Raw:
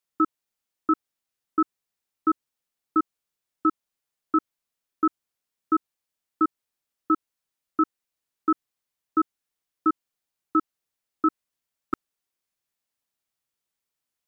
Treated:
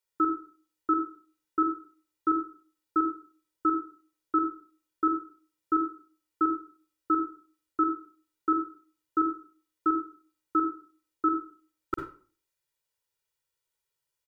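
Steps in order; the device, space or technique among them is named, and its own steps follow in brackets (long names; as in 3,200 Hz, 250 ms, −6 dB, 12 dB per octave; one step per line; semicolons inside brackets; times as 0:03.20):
microphone above a desk (comb filter 2.1 ms, depth 87%; convolution reverb RT60 0.45 s, pre-delay 44 ms, DRR 3.5 dB)
level −4 dB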